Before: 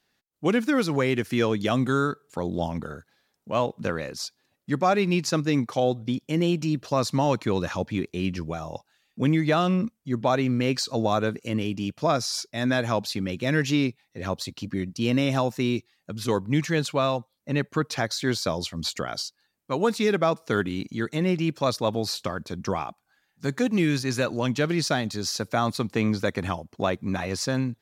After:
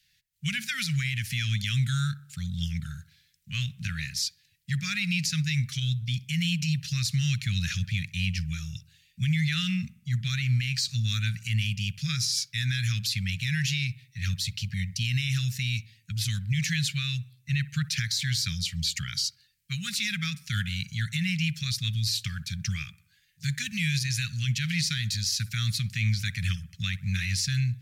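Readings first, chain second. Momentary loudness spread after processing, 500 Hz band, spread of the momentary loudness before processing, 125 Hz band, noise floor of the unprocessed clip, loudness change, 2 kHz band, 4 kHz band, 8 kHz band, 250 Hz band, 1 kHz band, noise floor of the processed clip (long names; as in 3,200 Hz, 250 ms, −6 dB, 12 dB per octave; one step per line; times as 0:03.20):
7 LU, below −40 dB, 9 LU, +3.0 dB, −74 dBFS, −2.5 dB, 0.0 dB, +3.5 dB, +3.0 dB, −9.5 dB, −22.0 dB, −66 dBFS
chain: inverse Chebyshev band-stop filter 290–1,000 Hz, stop band 50 dB
brickwall limiter −25.5 dBFS, peak gain reduction 9 dB
on a send: delay with a low-pass on its return 63 ms, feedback 47%, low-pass 1,900 Hz, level −18 dB
on the sum: level +7 dB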